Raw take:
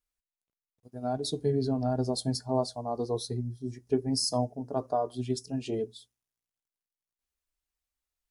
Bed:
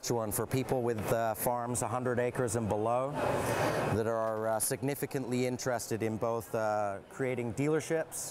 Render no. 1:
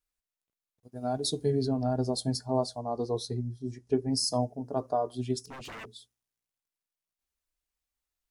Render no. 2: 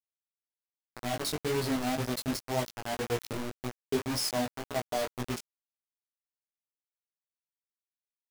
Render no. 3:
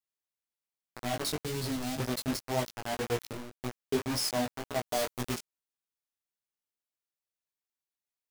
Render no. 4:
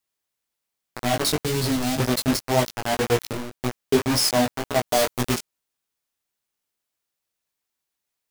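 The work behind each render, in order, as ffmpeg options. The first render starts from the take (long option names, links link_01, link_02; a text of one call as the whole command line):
ffmpeg -i in.wav -filter_complex "[0:a]asettb=1/sr,asplit=3[link_01][link_02][link_03];[link_01]atrim=end=0.954[link_04];[link_02]atrim=start=0.95:end=1.66,asetpts=PTS-STARTPTS,afade=type=in:duration=0.004:curve=qsin,afade=type=out:start_time=0.706:duration=0.004:curve=qsin,highshelf=frequency=3800:gain=6[link_05];[link_03]atrim=start=1.656[link_06];[link_04][link_05]acrossfade=duration=0.004:curve1=hsin:curve2=qsin[link_07];[link_07][link_06]acrossfade=duration=0.004:curve1=qsin:curve2=hsin,asettb=1/sr,asplit=3[link_08][link_09][link_10];[link_08]atrim=end=2.794[link_11];[link_09]atrim=start=2.79:end=4.17,asetpts=PTS-STARTPTS,afade=type=in:duration=0.004:curve=qsin,afade=type=out:start_time=1.376:duration=0.004:curve=qsin,lowpass=9500[link_12];[link_10]atrim=start=4.166[link_13];[link_11][link_12]acrossfade=duration=0.004:curve1=hsin:curve2=qsin[link_14];[link_14][link_13]acrossfade=duration=0.004:curve1=qsin:curve2=hsin,asettb=1/sr,asplit=3[link_15][link_16][link_17];[link_15]atrim=end=5.394[link_18];[link_16]atrim=start=5.39:end=5.93,asetpts=PTS-STARTPTS,afade=type=in:duration=0.004:curve=qsin,afade=type=out:start_time=0.536:duration=0.004:curve=qsin,aeval=exprs='0.0126*(abs(mod(val(0)/0.0126+3,4)-2)-1)':channel_layout=same[link_19];[link_17]atrim=start=5.926[link_20];[link_18][link_19]acrossfade=duration=0.004:curve1=hsin:curve2=qsin[link_21];[link_21][link_20]acrossfade=duration=0.004:curve1=qsin:curve2=hsin" out.wav
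ffmpeg -i in.wav -af "acrusher=bits=4:mix=0:aa=0.000001,flanger=delay=16.5:depth=3.8:speed=1.9" out.wav
ffmpeg -i in.wav -filter_complex "[0:a]asettb=1/sr,asplit=3[link_01][link_02][link_03];[link_01]atrim=end=1.424[link_04];[link_02]atrim=start=1.42:end=2,asetpts=PTS-STARTPTS,afade=type=in:duration=0.004:curve=qsin,afade=type=out:start_time=0.576:duration=0.004:curve=qsin,acrossover=split=240|3000[link_05][link_06][link_07];[link_06]acompressor=threshold=-37dB:ratio=6:attack=3.2:release=140:knee=2.83:detection=peak[link_08];[link_05][link_08][link_07]amix=inputs=3:normalize=0[link_09];[link_03]atrim=start=1.996[link_10];[link_04][link_09]acrossfade=duration=0.004:curve1=hsin:curve2=qsin[link_11];[link_11][link_10]acrossfade=duration=0.004:curve1=qsin:curve2=hsin,asettb=1/sr,asplit=3[link_12][link_13][link_14];[link_12]atrim=end=4.874[link_15];[link_13]atrim=start=4.87:end=5.37,asetpts=PTS-STARTPTS,afade=type=in:duration=0.004:curve=qsin,afade=type=out:start_time=0.496:duration=0.004:curve=qsin,highshelf=frequency=4500:gain=6.5[link_16];[link_14]atrim=start=5.366[link_17];[link_15][link_16]acrossfade=duration=0.004:curve1=hsin:curve2=qsin[link_18];[link_18][link_17]acrossfade=duration=0.004:curve1=qsin:curve2=hsin,asplit=2[link_19][link_20];[link_19]atrim=end=3.63,asetpts=PTS-STARTPTS,afade=type=out:start_time=3.14:duration=0.49:silence=0.0668344[link_21];[link_20]atrim=start=3.63,asetpts=PTS-STARTPTS,afade=type=in:duration=0.004:curve=hsin:silence=0.0668344[link_22];[link_21][link_22]concat=n=2:v=0:a=1" out.wav
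ffmpeg -i in.wav -af "volume=10.5dB" out.wav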